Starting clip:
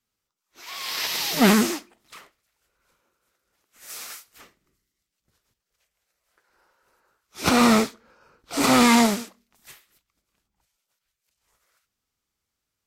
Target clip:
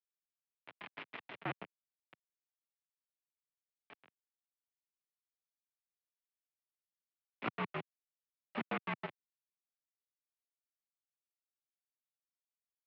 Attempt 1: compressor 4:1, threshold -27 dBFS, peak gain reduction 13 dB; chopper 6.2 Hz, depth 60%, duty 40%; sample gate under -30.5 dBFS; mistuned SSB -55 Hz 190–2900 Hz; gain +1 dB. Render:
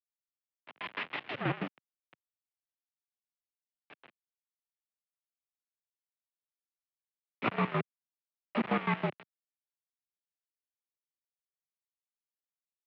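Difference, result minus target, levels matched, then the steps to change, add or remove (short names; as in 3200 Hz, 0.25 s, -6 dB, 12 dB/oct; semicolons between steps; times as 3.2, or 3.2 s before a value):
compressor: peak gain reduction -6 dB
change: compressor 4:1, threshold -35 dBFS, peak gain reduction 19 dB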